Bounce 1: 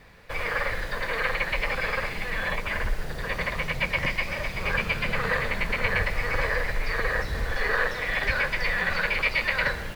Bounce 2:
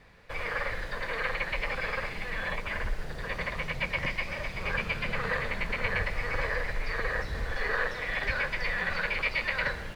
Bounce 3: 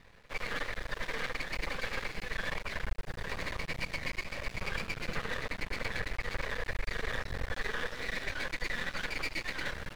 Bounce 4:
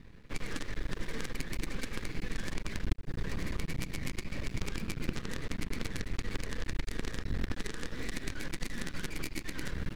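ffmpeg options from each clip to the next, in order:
ffmpeg -i in.wav -af "highshelf=frequency=12000:gain=-11.5,volume=-4.5dB" out.wav
ffmpeg -i in.wav -af "aeval=exprs='max(val(0),0)':channel_layout=same,alimiter=limit=-22.5dB:level=0:latency=1:release=256,volume=1dB" out.wav
ffmpeg -i in.wav -af "aeval=exprs='0.0891*(cos(1*acos(clip(val(0)/0.0891,-1,1)))-cos(1*PI/2))+0.0251*(cos(3*acos(clip(val(0)/0.0891,-1,1)))-cos(3*PI/2))+0.0251*(cos(4*acos(clip(val(0)/0.0891,-1,1)))-cos(4*PI/2))+0.002*(cos(5*acos(clip(val(0)/0.0891,-1,1)))-cos(5*PI/2))+0.0126*(cos(6*acos(clip(val(0)/0.0891,-1,1)))-cos(6*PI/2))':channel_layout=same,acompressor=threshold=-44dB:ratio=6,lowshelf=frequency=430:width_type=q:width=1.5:gain=10.5,volume=8.5dB" out.wav

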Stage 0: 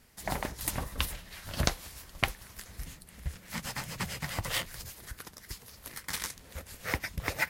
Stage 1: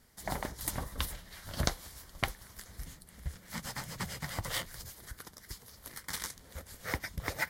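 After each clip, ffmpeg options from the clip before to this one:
ffmpeg -i in.wav -af "equalizer=frequency=2600:width_type=o:width=0.23:gain=-10.5,volume=-2.5dB" out.wav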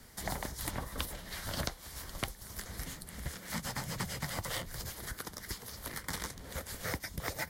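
ffmpeg -i in.wav -filter_complex "[0:a]acrossover=split=180|850|3900[link_01][link_02][link_03][link_04];[link_01]acompressor=threshold=-51dB:ratio=4[link_05];[link_02]acompressor=threshold=-52dB:ratio=4[link_06];[link_03]acompressor=threshold=-52dB:ratio=4[link_07];[link_04]acompressor=threshold=-52dB:ratio=4[link_08];[link_05][link_06][link_07][link_08]amix=inputs=4:normalize=0,volume=9dB" out.wav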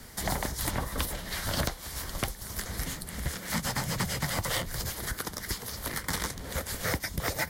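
ffmpeg -i in.wav -af "asoftclip=type=tanh:threshold=-26.5dB,volume=8dB" out.wav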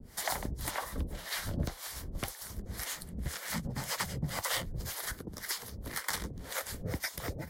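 ffmpeg -i in.wav -filter_complex "[0:a]acrossover=split=490[link_01][link_02];[link_01]aeval=exprs='val(0)*(1-1/2+1/2*cos(2*PI*1.9*n/s))':channel_layout=same[link_03];[link_02]aeval=exprs='val(0)*(1-1/2-1/2*cos(2*PI*1.9*n/s))':channel_layout=same[link_04];[link_03][link_04]amix=inputs=2:normalize=0" out.wav

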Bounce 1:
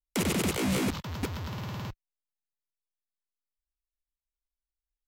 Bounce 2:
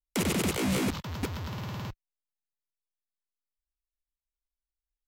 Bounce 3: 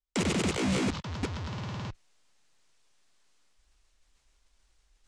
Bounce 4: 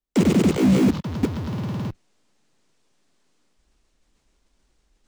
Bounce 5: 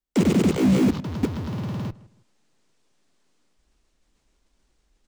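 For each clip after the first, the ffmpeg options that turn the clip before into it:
ffmpeg -i in.wav -af anull out.wav
ffmpeg -i in.wav -af "lowpass=frequency=8200:width=0.5412,lowpass=frequency=8200:width=1.3066,areverse,acompressor=mode=upward:threshold=-45dB:ratio=2.5,areverse" out.wav
ffmpeg -i in.wav -filter_complex "[0:a]equalizer=frequency=240:width=0.5:gain=13.5,acrossover=split=270[link_01][link_02];[link_02]acrusher=bits=5:mode=log:mix=0:aa=0.000001[link_03];[link_01][link_03]amix=inputs=2:normalize=0" out.wav
ffmpeg -i in.wav -filter_complex "[0:a]asplit=2[link_01][link_02];[link_02]adelay=159,lowpass=frequency=2200:poles=1,volume=-20dB,asplit=2[link_03][link_04];[link_04]adelay=159,lowpass=frequency=2200:poles=1,volume=0.28[link_05];[link_01][link_03][link_05]amix=inputs=3:normalize=0,volume=-1.5dB" out.wav

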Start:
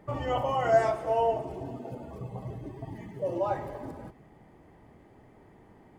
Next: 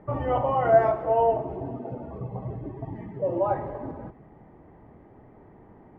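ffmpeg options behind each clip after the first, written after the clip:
ffmpeg -i in.wav -af "lowpass=1500,volume=4.5dB" out.wav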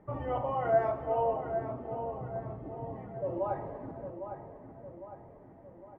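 ffmpeg -i in.wav -filter_complex "[0:a]asplit=2[link_01][link_02];[link_02]adelay=806,lowpass=frequency=2400:poles=1,volume=-8dB,asplit=2[link_03][link_04];[link_04]adelay=806,lowpass=frequency=2400:poles=1,volume=0.53,asplit=2[link_05][link_06];[link_06]adelay=806,lowpass=frequency=2400:poles=1,volume=0.53,asplit=2[link_07][link_08];[link_08]adelay=806,lowpass=frequency=2400:poles=1,volume=0.53,asplit=2[link_09][link_10];[link_10]adelay=806,lowpass=frequency=2400:poles=1,volume=0.53,asplit=2[link_11][link_12];[link_12]adelay=806,lowpass=frequency=2400:poles=1,volume=0.53[link_13];[link_01][link_03][link_05][link_07][link_09][link_11][link_13]amix=inputs=7:normalize=0,volume=-8dB" out.wav

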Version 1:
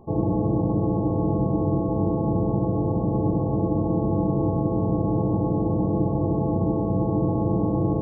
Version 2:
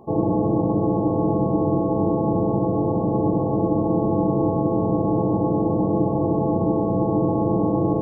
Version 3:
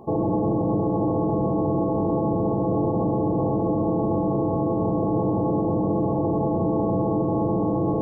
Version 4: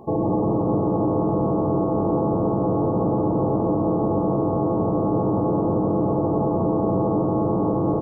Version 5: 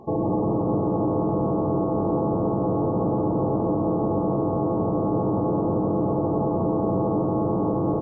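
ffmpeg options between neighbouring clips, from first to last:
ffmpeg -i in.wav -af "highpass=frequency=240:poles=1,volume=5.5dB" out.wav
ffmpeg -i in.wav -af "alimiter=limit=-18.5dB:level=0:latency=1:release=11,volume=2.5dB" out.wav
ffmpeg -i in.wav -filter_complex "[0:a]asplit=6[link_01][link_02][link_03][link_04][link_05][link_06];[link_02]adelay=176,afreqshift=90,volume=-10.5dB[link_07];[link_03]adelay=352,afreqshift=180,volume=-17.4dB[link_08];[link_04]adelay=528,afreqshift=270,volume=-24.4dB[link_09];[link_05]adelay=704,afreqshift=360,volume=-31.3dB[link_10];[link_06]adelay=880,afreqshift=450,volume=-38.2dB[link_11];[link_01][link_07][link_08][link_09][link_10][link_11]amix=inputs=6:normalize=0,volume=1dB" out.wav
ffmpeg -i in.wav -af "volume=-1.5dB" -ar 16000 -c:a libmp3lame -b:a 40k out.mp3

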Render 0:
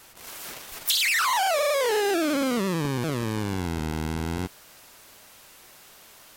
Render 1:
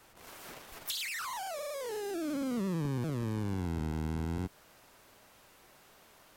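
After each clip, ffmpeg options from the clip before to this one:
ffmpeg -i in.wav -filter_complex "[0:a]highshelf=frequency=2200:gain=-9.5,acrossover=split=260|4800[link_01][link_02][link_03];[link_02]acompressor=threshold=-35dB:ratio=6[link_04];[link_01][link_04][link_03]amix=inputs=3:normalize=0,volume=-4dB" out.wav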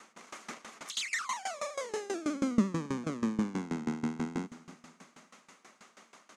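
ffmpeg -i in.wav -af "highpass=frequency=180:width=0.5412,highpass=frequency=180:width=1.3066,equalizer=frequency=220:width_type=q:width=4:gain=10,equalizer=frequency=1200:width_type=q:width=4:gain=8,equalizer=frequency=2100:width_type=q:width=4:gain=6,equalizer=frequency=6500:width_type=q:width=4:gain=8,lowpass=frequency=9000:width=0.5412,lowpass=frequency=9000:width=1.3066,aecho=1:1:285|570|855|1140:0.126|0.0592|0.0278|0.0131,aeval=exprs='val(0)*pow(10,-20*if(lt(mod(6.2*n/s,1),2*abs(6.2)/1000),1-mod(6.2*n/s,1)/(2*abs(6.2)/1000),(mod(6.2*n/s,1)-2*abs(6.2)/1000)/(1-2*abs(6.2)/1000))/20)':channel_layout=same,volume=6dB" out.wav

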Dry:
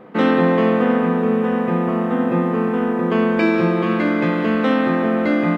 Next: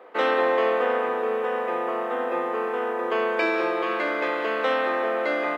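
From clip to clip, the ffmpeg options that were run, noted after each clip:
ffmpeg -i in.wav -af "highpass=frequency=430:width=0.5412,highpass=frequency=430:width=1.3066,volume=-2dB" out.wav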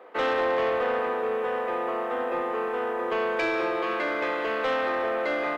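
ffmpeg -i in.wav -af "asoftclip=type=tanh:threshold=-17.5dB,volume=-1dB" out.wav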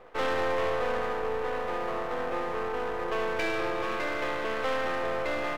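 ffmpeg -i in.wav -af "aeval=exprs='if(lt(val(0),0),0.251*val(0),val(0))':channel_layout=same" out.wav

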